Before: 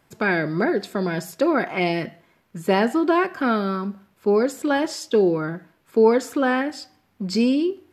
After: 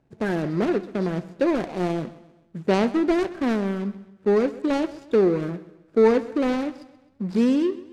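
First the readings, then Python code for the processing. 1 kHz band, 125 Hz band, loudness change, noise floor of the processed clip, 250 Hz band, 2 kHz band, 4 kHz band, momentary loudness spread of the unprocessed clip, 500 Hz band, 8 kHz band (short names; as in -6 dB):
-6.0 dB, 0.0 dB, -1.5 dB, -58 dBFS, -0.5 dB, -8.0 dB, -6.0 dB, 11 LU, -1.5 dB, n/a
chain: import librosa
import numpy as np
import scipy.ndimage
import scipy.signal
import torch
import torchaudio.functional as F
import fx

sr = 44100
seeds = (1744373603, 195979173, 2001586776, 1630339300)

p1 = scipy.signal.medfilt(x, 41)
p2 = scipy.signal.sosfilt(scipy.signal.butter(2, 9100.0, 'lowpass', fs=sr, output='sos'), p1)
y = p2 + fx.echo_feedback(p2, sr, ms=131, feedback_pct=45, wet_db=-18.0, dry=0)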